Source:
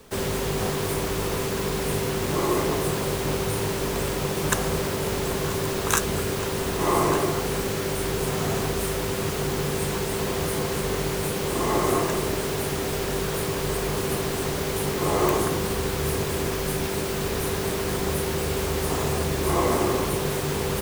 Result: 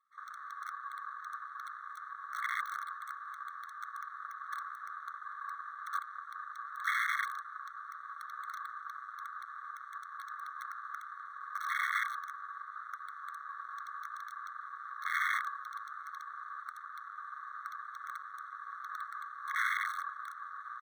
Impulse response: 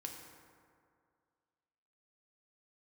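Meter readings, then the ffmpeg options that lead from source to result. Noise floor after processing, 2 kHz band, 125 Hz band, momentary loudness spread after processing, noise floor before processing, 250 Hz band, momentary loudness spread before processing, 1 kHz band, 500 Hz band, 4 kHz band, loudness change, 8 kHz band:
-49 dBFS, -5.0 dB, under -40 dB, 12 LU, -28 dBFS, under -40 dB, 4 LU, -8.5 dB, under -40 dB, -21.0 dB, -14.5 dB, -28.0 dB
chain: -filter_complex "[0:a]lowpass=f=1.2k:w=0.5412,lowpass=f=1.2k:w=1.3066,aresample=16000,asoftclip=type=tanh:threshold=-21dB,aresample=44100,aecho=1:1:1.7:0.63,areverse,acompressor=mode=upward:threshold=-42dB:ratio=2.5,areverse,acrusher=bits=4:mode=log:mix=0:aa=0.000001,bandpass=f=790:t=q:w=0.69:csg=0,asplit=2[a][b];[b]adelay=489.8,volume=-24dB,highshelf=f=4k:g=-11[c];[a][c]amix=inputs=2:normalize=0,aeval=exprs='(mod(12.6*val(0)+1,2)-1)/12.6':c=same,afwtdn=0.0251,afftfilt=real='re*eq(mod(floor(b*sr/1024/1100),2),1)':imag='im*eq(mod(floor(b*sr/1024/1100),2),1)':win_size=1024:overlap=0.75,volume=2.5dB"

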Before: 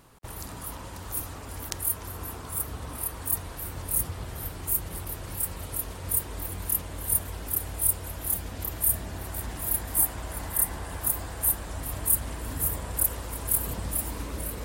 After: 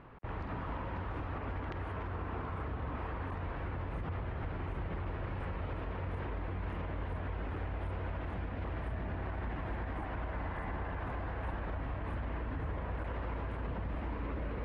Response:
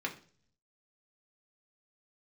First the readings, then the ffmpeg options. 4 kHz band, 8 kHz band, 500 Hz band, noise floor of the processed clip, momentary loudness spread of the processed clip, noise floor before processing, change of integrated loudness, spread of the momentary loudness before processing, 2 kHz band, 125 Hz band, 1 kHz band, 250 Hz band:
-13.5 dB, under -40 dB, -1.0 dB, -41 dBFS, 1 LU, -41 dBFS, -11.0 dB, 11 LU, -1.5 dB, -1.5 dB, -0.5 dB, -1.0 dB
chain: -af "lowpass=f=2.4k:w=0.5412,lowpass=f=2.4k:w=1.3066,alimiter=level_in=9dB:limit=-24dB:level=0:latency=1:release=68,volume=-9dB,volume=3dB"

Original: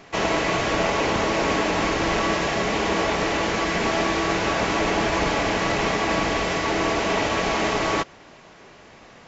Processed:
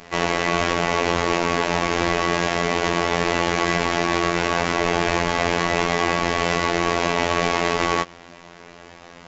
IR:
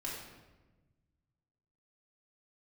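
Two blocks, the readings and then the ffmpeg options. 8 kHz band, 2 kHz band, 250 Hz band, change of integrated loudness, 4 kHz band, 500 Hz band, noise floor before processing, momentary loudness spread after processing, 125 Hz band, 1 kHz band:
n/a, +1.5 dB, +0.5 dB, +1.5 dB, +1.0 dB, +1.0 dB, -48 dBFS, 1 LU, +2.0 dB, +1.5 dB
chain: -af "aeval=exprs='0.355*(cos(1*acos(clip(val(0)/0.355,-1,1)))-cos(1*PI/2))+0.00282*(cos(8*acos(clip(val(0)/0.355,-1,1)))-cos(8*PI/2))':c=same,alimiter=limit=-16dB:level=0:latency=1:release=53,afftfilt=real='hypot(re,im)*cos(PI*b)':imag='0':win_size=2048:overlap=0.75,volume=7dB"

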